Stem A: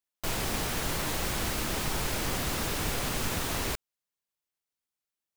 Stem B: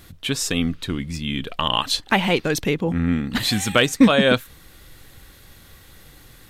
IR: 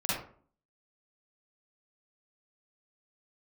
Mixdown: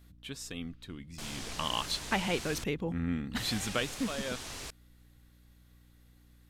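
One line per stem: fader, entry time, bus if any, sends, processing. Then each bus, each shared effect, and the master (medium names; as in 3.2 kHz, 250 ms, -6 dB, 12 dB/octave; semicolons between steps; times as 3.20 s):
-14.0 dB, 0.95 s, muted 2.64–3.36 s, no send, low-pass 7.6 kHz 12 dB/octave; treble shelf 2.9 kHz +11 dB; vibrato 1.4 Hz 92 cents
1.30 s -18.5 dB -> 1.57 s -12 dB -> 3.69 s -12 dB -> 3.96 s -21 dB, 0.00 s, no send, hum 60 Hz, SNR 17 dB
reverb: none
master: none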